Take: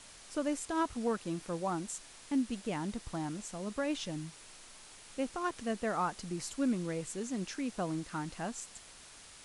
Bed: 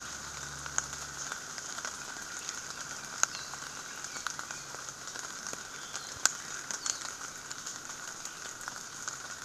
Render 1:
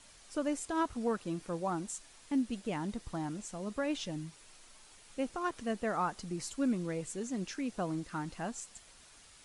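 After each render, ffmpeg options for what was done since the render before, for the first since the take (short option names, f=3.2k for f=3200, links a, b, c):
-af "afftdn=nr=6:nf=-54"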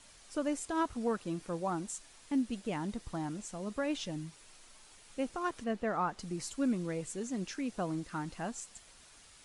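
-filter_complex "[0:a]asettb=1/sr,asplit=3[a][b][c];[a]atrim=end=5.644[d];[b]atrim=start=5.64:end=6.19,asetpts=PTS-STARTPTS,afade=t=in:d=0.004:c=qsin,afade=t=out:st=0.546:d=0.004:c=qsin,aemphasis=mode=reproduction:type=50fm[e];[c]atrim=start=6.186[f];[d][e]acrossfade=d=0.004:c1=hsin:c2=qsin[g];[g][f]acrossfade=d=0.004:c1=qsin:c2=hsin"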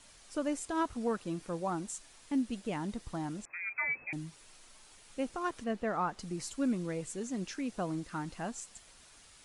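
-filter_complex "[0:a]asettb=1/sr,asplit=3[a][b][c];[a]atrim=end=3.454[d];[b]atrim=start=3.45:end=4.13,asetpts=PTS-STARTPTS,afade=t=in:d=0.004:c=qsin,afade=t=out:st=0.676:d=0.004:c=qsin,lowpass=f=2.2k:t=q:w=0.5098,lowpass=f=2.2k:t=q:w=0.6013,lowpass=f=2.2k:t=q:w=0.9,lowpass=f=2.2k:t=q:w=2.563,afreqshift=-2600[e];[c]atrim=start=4.126[f];[d][e]acrossfade=d=0.004:c1=hsin:c2=qsin[g];[g][f]acrossfade=d=0.004:c1=qsin:c2=hsin"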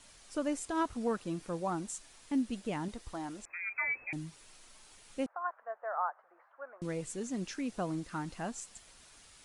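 -filter_complex "[0:a]asettb=1/sr,asplit=3[a][b][c];[a]atrim=end=2.884[d];[b]atrim=start=2.88:end=4.13,asetpts=PTS-STARTPTS,afade=t=in:d=0.004:c=qsin,afade=t=out:st=1.246:d=0.004:c=qsin,equalizer=f=170:w=1.5:g=-11.5[e];[c]atrim=start=4.126[f];[d][e]acrossfade=d=0.004:c1=hsin:c2=qsin[g];[g][f]acrossfade=d=0.004:c1=qsin:c2=hsin,asettb=1/sr,asplit=3[h][i][j];[h]atrim=end=5.264[k];[i]atrim=start=5.26:end=6.82,asetpts=PTS-STARTPTS,afade=t=in:d=0.004:c=qsin,afade=t=out:st=1.556:d=0.004:c=qsin,asuperpass=centerf=980:order=8:qfactor=0.94[l];[j]atrim=start=6.816[m];[k][l]acrossfade=d=0.004:c1=hsin:c2=qsin[n];[n][m]acrossfade=d=0.004:c1=qsin:c2=hsin"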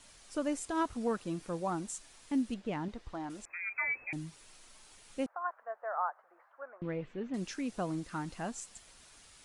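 -filter_complex "[0:a]asettb=1/sr,asplit=3[a][b][c];[a]atrim=end=2.544[d];[b]atrim=start=2.54:end=3.3,asetpts=PTS-STARTPTS,afade=t=in:d=0.004:c=qsin,afade=t=out:st=0.756:d=0.004:c=qsin,adynamicsmooth=sensitivity=5.5:basefreq=4.1k[e];[c]atrim=start=3.296[f];[d][e]acrossfade=d=0.004:c1=hsin:c2=qsin[g];[g][f]acrossfade=d=0.004:c1=qsin:c2=hsin,asettb=1/sr,asplit=3[h][i][j];[h]atrim=end=6.624[k];[i]atrim=start=6.62:end=7.34,asetpts=PTS-STARTPTS,afade=t=in:d=0.004:c=qsin,afade=t=out:st=0.716:d=0.004:c=qsin,lowpass=f=2.9k:w=0.5412,lowpass=f=2.9k:w=1.3066[l];[j]atrim=start=7.336[m];[k][l]acrossfade=d=0.004:c1=hsin:c2=qsin[n];[n][m]acrossfade=d=0.004:c1=qsin:c2=hsin"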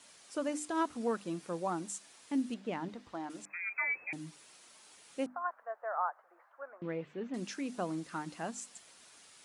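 -af "highpass=180,bandreject=f=50:t=h:w=6,bandreject=f=100:t=h:w=6,bandreject=f=150:t=h:w=6,bandreject=f=200:t=h:w=6,bandreject=f=250:t=h:w=6,bandreject=f=300:t=h:w=6"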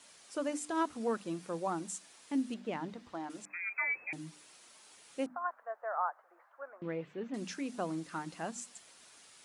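-af "bandreject=f=60:t=h:w=6,bandreject=f=120:t=h:w=6,bandreject=f=180:t=h:w=6,bandreject=f=240:t=h:w=6,bandreject=f=300:t=h:w=6"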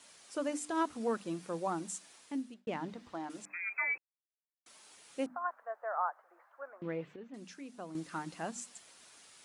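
-filter_complex "[0:a]asplit=6[a][b][c][d][e][f];[a]atrim=end=2.67,asetpts=PTS-STARTPTS,afade=t=out:st=2.15:d=0.52[g];[b]atrim=start=2.67:end=3.98,asetpts=PTS-STARTPTS,afade=t=in:d=0.004:c=hsin,afade=t=out:st=1.306:d=0.004:c=hsin[h];[c]atrim=start=3.98:end=4.66,asetpts=PTS-STARTPTS,volume=0[i];[d]atrim=start=4.66:end=7.162,asetpts=PTS-STARTPTS,afade=t=in:d=0.004:c=hsin[j];[e]atrim=start=7.158:end=7.952,asetpts=PTS-STARTPTS,volume=-9dB[k];[f]atrim=start=7.948[l];[g][h][i][j]concat=n=4:v=0:a=1[m];[m][k]acrossfade=d=0.004:c1=hsin:c2=hsin[n];[n][l]acrossfade=d=0.004:c1=hsin:c2=hsin"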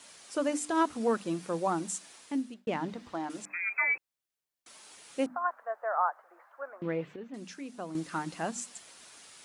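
-af "volume=5.5dB"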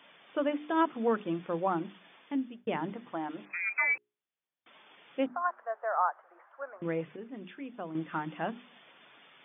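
-af "afftfilt=real='re*between(b*sr/4096,110,3600)':imag='im*between(b*sr/4096,110,3600)':win_size=4096:overlap=0.75,bandreject=f=60:t=h:w=6,bandreject=f=120:t=h:w=6,bandreject=f=180:t=h:w=6,bandreject=f=240:t=h:w=6,bandreject=f=300:t=h:w=6,bandreject=f=360:t=h:w=6,bandreject=f=420:t=h:w=6"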